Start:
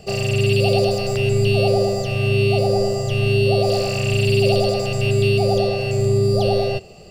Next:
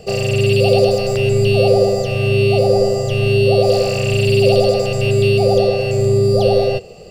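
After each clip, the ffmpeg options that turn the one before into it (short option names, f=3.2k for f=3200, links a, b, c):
-af "equalizer=f=490:t=o:w=0.3:g=11,volume=2dB"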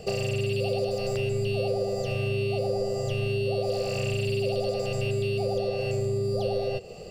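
-af "acompressor=threshold=-22dB:ratio=5,volume=-3.5dB"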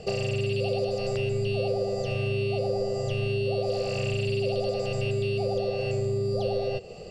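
-af "lowpass=7.3k"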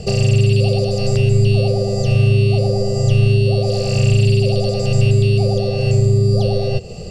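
-af "bass=f=250:g=13,treble=f=4k:g=10,volume=5.5dB"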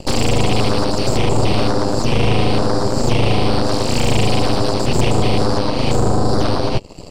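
-af "aeval=exprs='0.75*(cos(1*acos(clip(val(0)/0.75,-1,1)))-cos(1*PI/2))+0.15*(cos(3*acos(clip(val(0)/0.75,-1,1)))-cos(3*PI/2))+0.266*(cos(8*acos(clip(val(0)/0.75,-1,1)))-cos(8*PI/2))':c=same,volume=-3.5dB"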